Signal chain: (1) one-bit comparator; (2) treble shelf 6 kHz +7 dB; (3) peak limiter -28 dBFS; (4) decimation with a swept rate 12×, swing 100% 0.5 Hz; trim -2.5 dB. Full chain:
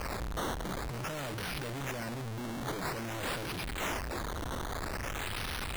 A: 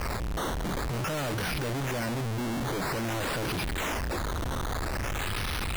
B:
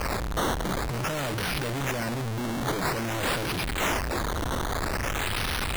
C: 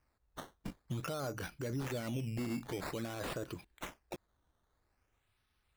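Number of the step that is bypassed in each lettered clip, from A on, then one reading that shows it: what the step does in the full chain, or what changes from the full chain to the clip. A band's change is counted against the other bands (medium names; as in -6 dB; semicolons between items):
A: 2, 125 Hz band +2.5 dB; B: 3, mean gain reduction 8.0 dB; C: 1, crest factor change +5.5 dB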